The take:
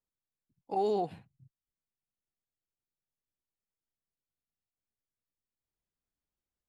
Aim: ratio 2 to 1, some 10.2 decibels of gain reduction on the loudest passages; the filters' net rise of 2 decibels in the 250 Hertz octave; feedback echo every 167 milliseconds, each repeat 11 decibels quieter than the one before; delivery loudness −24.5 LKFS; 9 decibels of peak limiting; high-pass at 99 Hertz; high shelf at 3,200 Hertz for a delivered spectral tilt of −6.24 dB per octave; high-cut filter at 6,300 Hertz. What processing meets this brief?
high-pass filter 99 Hz
low-pass filter 6,300 Hz
parametric band 250 Hz +3.5 dB
high-shelf EQ 3,200 Hz +3.5 dB
downward compressor 2 to 1, threshold −44 dBFS
brickwall limiter −38 dBFS
repeating echo 167 ms, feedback 28%, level −11 dB
level +24 dB

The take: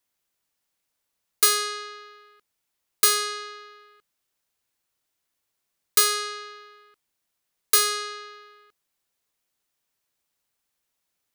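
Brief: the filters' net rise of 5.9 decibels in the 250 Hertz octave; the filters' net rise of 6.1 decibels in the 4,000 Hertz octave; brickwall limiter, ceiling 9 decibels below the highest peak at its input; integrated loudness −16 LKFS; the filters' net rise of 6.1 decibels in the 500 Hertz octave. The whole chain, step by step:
parametric band 250 Hz +4.5 dB
parametric band 500 Hz +6 dB
parametric band 4,000 Hz +7 dB
level +7.5 dB
brickwall limiter −4 dBFS

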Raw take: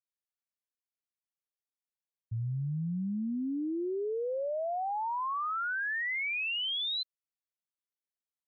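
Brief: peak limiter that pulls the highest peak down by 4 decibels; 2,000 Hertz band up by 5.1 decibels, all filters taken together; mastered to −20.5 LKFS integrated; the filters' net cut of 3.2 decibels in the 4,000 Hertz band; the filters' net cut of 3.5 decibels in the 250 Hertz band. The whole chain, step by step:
parametric band 250 Hz −5 dB
parametric band 2,000 Hz +8.5 dB
parametric band 4,000 Hz −8.5 dB
level +12 dB
brickwall limiter −15.5 dBFS

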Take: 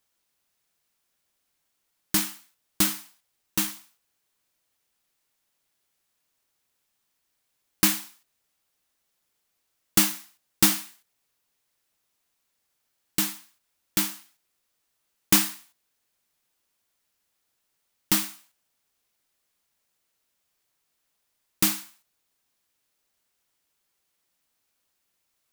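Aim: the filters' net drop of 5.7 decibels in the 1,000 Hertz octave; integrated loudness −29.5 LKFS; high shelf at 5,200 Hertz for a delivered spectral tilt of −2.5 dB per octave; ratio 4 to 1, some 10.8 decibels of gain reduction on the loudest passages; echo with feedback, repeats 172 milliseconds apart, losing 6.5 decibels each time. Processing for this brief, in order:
parametric band 1,000 Hz −7 dB
high-shelf EQ 5,200 Hz −8 dB
downward compressor 4 to 1, threshold −31 dBFS
repeating echo 172 ms, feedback 47%, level −6.5 dB
level +9 dB

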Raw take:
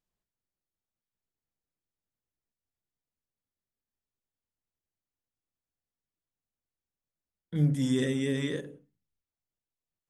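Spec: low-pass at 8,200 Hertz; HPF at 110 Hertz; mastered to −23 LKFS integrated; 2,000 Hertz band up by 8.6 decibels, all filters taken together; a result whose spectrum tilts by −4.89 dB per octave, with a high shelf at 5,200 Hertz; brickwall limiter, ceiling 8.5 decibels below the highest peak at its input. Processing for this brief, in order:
high-pass filter 110 Hz
low-pass filter 8,200 Hz
parametric band 2,000 Hz +8.5 dB
high-shelf EQ 5,200 Hz +5 dB
level +9.5 dB
brickwall limiter −13.5 dBFS

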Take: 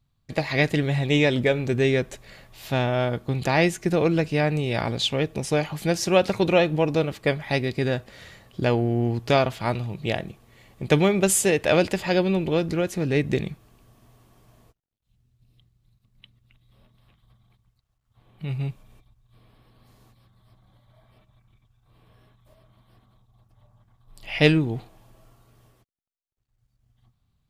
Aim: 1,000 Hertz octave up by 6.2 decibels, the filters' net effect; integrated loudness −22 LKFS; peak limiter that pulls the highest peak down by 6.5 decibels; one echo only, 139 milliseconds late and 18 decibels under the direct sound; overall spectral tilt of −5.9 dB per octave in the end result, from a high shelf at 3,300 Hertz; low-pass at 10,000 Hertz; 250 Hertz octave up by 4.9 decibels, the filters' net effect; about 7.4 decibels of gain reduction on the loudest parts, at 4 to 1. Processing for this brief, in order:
low-pass filter 10,000 Hz
parametric band 250 Hz +6.5 dB
parametric band 1,000 Hz +8.5 dB
high-shelf EQ 3,300 Hz −3.5 dB
downward compressor 4 to 1, threshold −18 dBFS
brickwall limiter −14 dBFS
single-tap delay 139 ms −18 dB
level +3.5 dB

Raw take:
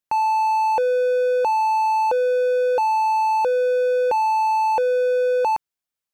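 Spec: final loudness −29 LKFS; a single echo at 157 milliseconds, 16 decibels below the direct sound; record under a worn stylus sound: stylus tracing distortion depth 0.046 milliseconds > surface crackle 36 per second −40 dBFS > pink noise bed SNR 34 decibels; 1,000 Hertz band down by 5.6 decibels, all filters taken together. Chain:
parametric band 1,000 Hz −6.5 dB
single-tap delay 157 ms −16 dB
stylus tracing distortion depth 0.046 ms
surface crackle 36 per second −40 dBFS
pink noise bed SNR 34 dB
level −5.5 dB

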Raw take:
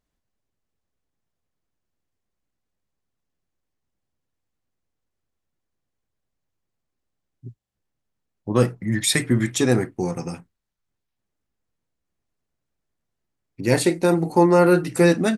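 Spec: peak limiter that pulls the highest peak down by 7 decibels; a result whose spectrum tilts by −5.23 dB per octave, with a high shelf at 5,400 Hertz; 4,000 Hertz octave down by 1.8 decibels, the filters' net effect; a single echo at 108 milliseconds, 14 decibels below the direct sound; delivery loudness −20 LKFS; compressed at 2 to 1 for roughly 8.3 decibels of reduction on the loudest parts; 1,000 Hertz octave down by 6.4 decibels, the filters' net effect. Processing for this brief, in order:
parametric band 1,000 Hz −8.5 dB
parametric band 4,000 Hz −3.5 dB
high-shelf EQ 5,400 Hz +4.5 dB
downward compressor 2 to 1, threshold −28 dBFS
brickwall limiter −19 dBFS
single-tap delay 108 ms −14 dB
level +10 dB

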